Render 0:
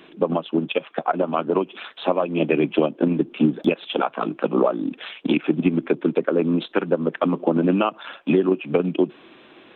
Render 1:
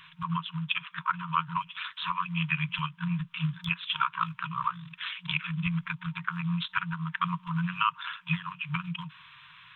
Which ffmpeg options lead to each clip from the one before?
-af "afftfilt=real='re*(1-between(b*sr/4096,180,920))':imag='im*(1-between(b*sr/4096,180,920))':win_size=4096:overlap=0.75"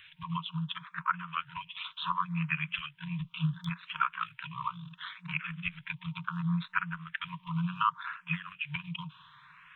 -filter_complex "[0:a]asplit=2[a][b];[b]afreqshift=0.7[c];[a][c]amix=inputs=2:normalize=1"

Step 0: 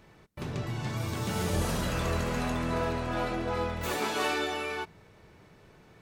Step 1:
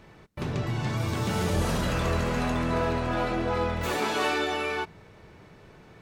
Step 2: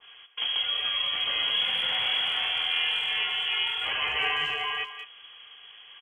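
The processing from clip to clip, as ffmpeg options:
-filter_complex "[0:a]highshelf=f=6.9k:g=-6.5,asplit=2[a][b];[b]alimiter=level_in=1.5dB:limit=-24dB:level=0:latency=1,volume=-1.5dB,volume=-2dB[c];[a][c]amix=inputs=2:normalize=0"
-filter_complex "[0:a]lowpass=f=2.9k:t=q:w=0.5098,lowpass=f=2.9k:t=q:w=0.6013,lowpass=f=2.9k:t=q:w=0.9,lowpass=f=2.9k:t=q:w=2.563,afreqshift=-3400,asplit=2[a][b];[b]adelay=200,highpass=300,lowpass=3.4k,asoftclip=type=hard:threshold=-23dB,volume=-11dB[c];[a][c]amix=inputs=2:normalize=0,adynamicequalizer=threshold=0.0141:dfrequency=1800:dqfactor=0.7:tfrequency=1800:tqfactor=0.7:attack=5:release=100:ratio=0.375:range=2:mode=cutabove:tftype=highshelf,volume=2dB"

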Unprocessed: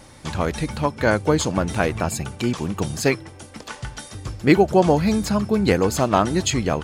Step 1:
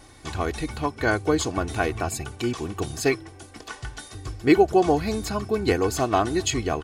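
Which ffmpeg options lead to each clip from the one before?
-af "aecho=1:1:2.7:0.61,volume=-4.5dB"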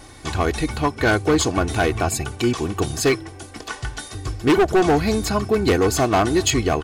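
-af "asoftclip=type=hard:threshold=-18.5dB,volume=6.5dB"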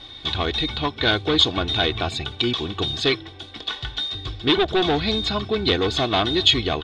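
-af "lowpass=f=3.6k:t=q:w=14,volume=-4.5dB"

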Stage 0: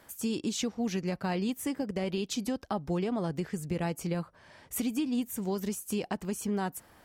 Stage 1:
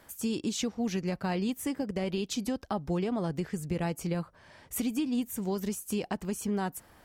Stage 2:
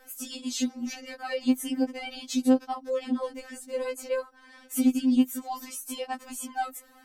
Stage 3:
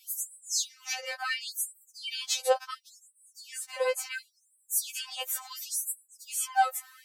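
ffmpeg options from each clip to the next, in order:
-af "lowshelf=f=64:g=6"
-af "afftfilt=real='re*3.46*eq(mod(b,12),0)':imag='im*3.46*eq(mod(b,12),0)':win_size=2048:overlap=0.75,volume=4.5dB"
-af "afftfilt=real='re*gte(b*sr/1024,490*pow(7800/490,0.5+0.5*sin(2*PI*0.71*pts/sr)))':imag='im*gte(b*sr/1024,490*pow(7800/490,0.5+0.5*sin(2*PI*0.71*pts/sr)))':win_size=1024:overlap=0.75,volume=6.5dB"

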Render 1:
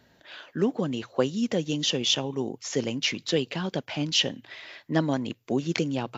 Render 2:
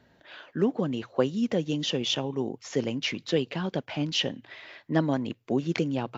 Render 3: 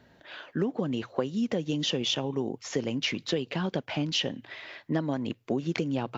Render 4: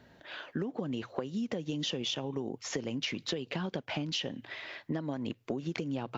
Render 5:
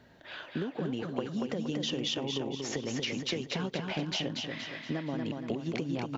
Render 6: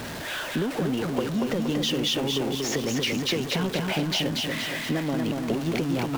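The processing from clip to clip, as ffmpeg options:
-af "highshelf=f=4.5k:g=-11.5"
-af "acompressor=threshold=-27dB:ratio=6,volume=2.5dB"
-af "acompressor=threshold=-31dB:ratio=6"
-af "aecho=1:1:235|470|705|940|1175|1410:0.631|0.278|0.122|0.0537|0.0236|0.0104"
-af "aeval=exprs='val(0)+0.5*0.0178*sgn(val(0))':c=same,volume=5dB"

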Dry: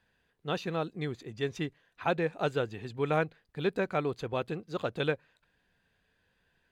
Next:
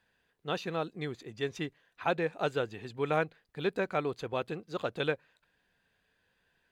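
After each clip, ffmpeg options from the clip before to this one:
-af "lowshelf=f=210:g=-6"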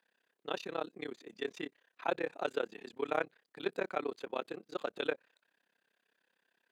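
-af "highpass=f=230:w=0.5412,highpass=f=230:w=1.3066,tremolo=f=33:d=0.974"

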